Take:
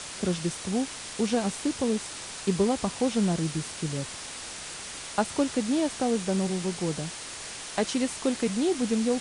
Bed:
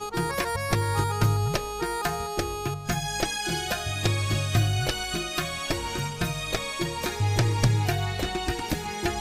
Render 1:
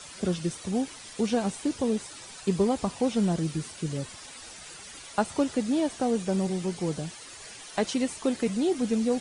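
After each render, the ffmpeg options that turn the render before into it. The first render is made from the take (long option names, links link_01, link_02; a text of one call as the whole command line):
ffmpeg -i in.wav -af "afftdn=noise_reduction=11:noise_floor=-40" out.wav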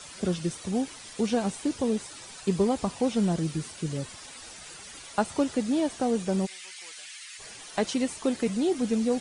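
ffmpeg -i in.wav -filter_complex "[0:a]asplit=3[link_01][link_02][link_03];[link_01]afade=type=out:start_time=6.45:duration=0.02[link_04];[link_02]highpass=frequency=2100:width_type=q:width=1.7,afade=type=in:start_time=6.45:duration=0.02,afade=type=out:start_time=7.38:duration=0.02[link_05];[link_03]afade=type=in:start_time=7.38:duration=0.02[link_06];[link_04][link_05][link_06]amix=inputs=3:normalize=0" out.wav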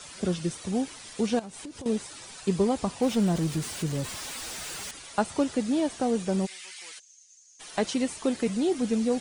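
ffmpeg -i in.wav -filter_complex "[0:a]asettb=1/sr,asplit=3[link_01][link_02][link_03];[link_01]atrim=end=1.394[link_04];[link_02]atrim=start=1.39:end=1.86,asetpts=PTS-STARTPTS,afade=type=in:duration=0.004:curve=qsin,afade=type=out:start_time=0.466:duration=0.004:curve=qsin,acompressor=threshold=-37dB:ratio=10:attack=3.2:release=140:knee=1:detection=peak[link_05];[link_03]atrim=start=1.856[link_06];[link_04][link_05]acrossfade=duration=0.004:curve1=hsin:curve2=qsin[link_07];[link_07][link_06]acrossfade=duration=0.004:curve1=qsin:curve2=hsin,asettb=1/sr,asplit=3[link_08][link_09][link_10];[link_08]atrim=end=3.024[link_11];[link_09]atrim=start=3.02:end=4.91,asetpts=PTS-STARTPTS,afade=type=in:duration=0.004:curve=qsin,afade=type=out:start_time=1.886:duration=0.004:curve=qsin,aeval=exprs='val(0)+0.5*0.0168*sgn(val(0))':channel_layout=same[link_12];[link_10]atrim=start=4.906[link_13];[link_11][link_12]acrossfade=duration=0.004:curve1=hsin:curve2=qsin[link_14];[link_14][link_13]acrossfade=duration=0.004:curve1=qsin:curve2=hsin,asplit=3[link_15][link_16][link_17];[link_15]afade=type=out:start_time=6.98:duration=0.02[link_18];[link_16]bandpass=frequency=6400:width_type=q:width=14,afade=type=in:start_time=6.98:duration=0.02,afade=type=out:start_time=7.59:duration=0.02[link_19];[link_17]afade=type=in:start_time=7.59:duration=0.02[link_20];[link_18][link_19][link_20]amix=inputs=3:normalize=0" out.wav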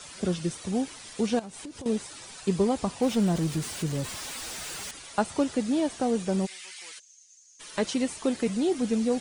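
ffmpeg -i in.wav -filter_complex "[0:a]asettb=1/sr,asplit=3[link_01][link_02][link_03];[link_01]atrim=end=6.924[link_04];[link_02]atrim=start=6.92:end=7.87,asetpts=PTS-STARTPTS,afade=type=in:duration=0.004:curve=qsin,afade=type=out:start_time=0.946:duration=0.004:curve=qsin,asuperstop=centerf=740:order=4:qfactor=4.4[link_05];[link_03]atrim=start=7.866[link_06];[link_04][link_05]acrossfade=duration=0.004:curve1=hsin:curve2=qsin[link_07];[link_07][link_06]acrossfade=duration=0.004:curve1=qsin:curve2=hsin" out.wav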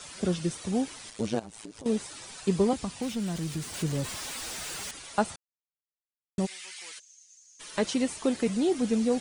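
ffmpeg -i in.wav -filter_complex "[0:a]asettb=1/sr,asplit=3[link_01][link_02][link_03];[link_01]atrim=end=1.104[link_04];[link_02]atrim=start=1.1:end=1.85,asetpts=PTS-STARTPTS,afade=type=in:duration=0.004:curve=qsin,afade=type=out:start_time=0.746:duration=0.004:curve=qsin,tremolo=f=110:d=0.889[link_05];[link_03]atrim=start=1.846[link_06];[link_04][link_05]acrossfade=duration=0.004:curve1=hsin:curve2=qsin[link_07];[link_07][link_06]acrossfade=duration=0.004:curve1=qsin:curve2=hsin,asettb=1/sr,asplit=3[link_08][link_09][link_10];[link_08]atrim=end=2.734[link_11];[link_09]atrim=start=2.73:end=3.74,asetpts=PTS-STARTPTS,afade=type=in:duration=0.004:curve=qsin,afade=type=out:start_time=1.006:duration=0.004:curve=qsin,acrossover=split=270|1400[link_12][link_13][link_14];[link_12]acompressor=threshold=-32dB:ratio=4[link_15];[link_13]acompressor=threshold=-41dB:ratio=4[link_16];[link_14]acompressor=threshold=-39dB:ratio=4[link_17];[link_15][link_16][link_17]amix=inputs=3:normalize=0[link_18];[link_10]atrim=start=3.736[link_19];[link_11][link_18]acrossfade=duration=0.004:curve1=hsin:curve2=qsin[link_20];[link_20][link_19]acrossfade=duration=0.004:curve1=qsin:curve2=hsin,asplit=3[link_21][link_22][link_23];[link_21]atrim=end=5.36,asetpts=PTS-STARTPTS,afade=type=out:start_time=5.356:duration=0.004:curve=hsin[link_24];[link_22]atrim=start=5.36:end=6.38,asetpts=PTS-STARTPTS,volume=0[link_25];[link_23]atrim=start=6.38,asetpts=PTS-STARTPTS,afade=type=in:duration=0.004:curve=hsin[link_26];[link_24][link_25][link_26]concat=n=3:v=0:a=1" out.wav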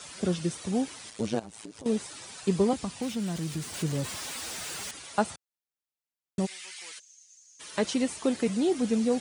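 ffmpeg -i in.wav -af "highpass=63" out.wav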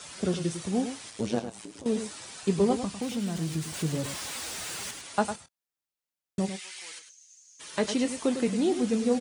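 ffmpeg -i in.wav -filter_complex "[0:a]asplit=2[link_01][link_02];[link_02]adelay=25,volume=-13.5dB[link_03];[link_01][link_03]amix=inputs=2:normalize=0,asplit=2[link_04][link_05];[link_05]aecho=0:1:102:0.335[link_06];[link_04][link_06]amix=inputs=2:normalize=0" out.wav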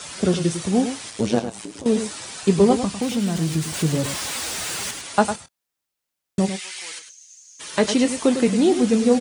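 ffmpeg -i in.wav -af "volume=8.5dB" out.wav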